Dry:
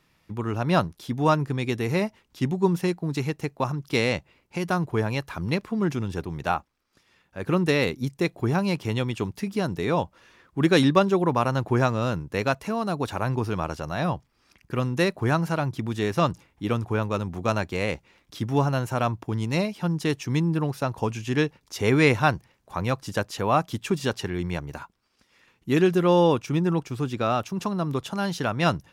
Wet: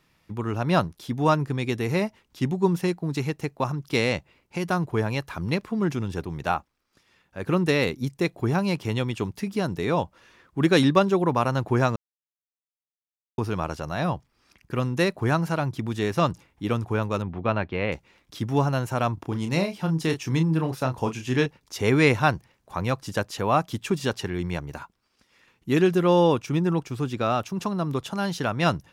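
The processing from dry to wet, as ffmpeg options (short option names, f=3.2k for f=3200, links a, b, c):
-filter_complex "[0:a]asettb=1/sr,asplit=3[a][b][c];[a]atrim=end=17.224[d];[b]atrim=start=17.22:end=17.92,asetpts=PTS-STARTPTS,afade=t=in:d=0.004:c=qsin,afade=t=out:st=0.696:d=0.004:c=qsin,lowpass=f=3.3k:w=0.5412,lowpass=f=3.3k:w=1.3066[e];[c]atrim=start=17.916[f];[d][e]acrossfade=d=0.004:c1=hsin:c2=qsin[g];[g][f]acrossfade=d=0.004:c1=qsin:c2=hsin,asettb=1/sr,asplit=3[h][i][j];[h]atrim=end=19.144[k];[i]atrim=start=19.14:end=21.46,asetpts=PTS-STARTPTS,afade=t=in:d=0.004:c=qsin,afade=t=out:st=2.316:d=0.004:c=qsin,asplit=2[l][m];[m]adelay=31,volume=-7.5dB[n];[l][n]amix=inputs=2:normalize=0,atrim=end_sample=102312[o];[j]atrim=start=21.456[p];[k][o]acrossfade=d=0.004:c1=hsin:c2=qsin[q];[q][p]acrossfade=d=0.004:c1=qsin:c2=hsin,asplit=3[r][s][t];[r]atrim=end=11.96,asetpts=PTS-STARTPTS,afade=t=out:st=11.956:d=0.004:c=hsin[u];[s]atrim=start=11.96:end=13.38,asetpts=PTS-STARTPTS,volume=0[v];[t]atrim=start=13.38,asetpts=PTS-STARTPTS,afade=t=in:d=0.004:c=hsin[w];[u][v][w]concat=n=3:v=0:a=1"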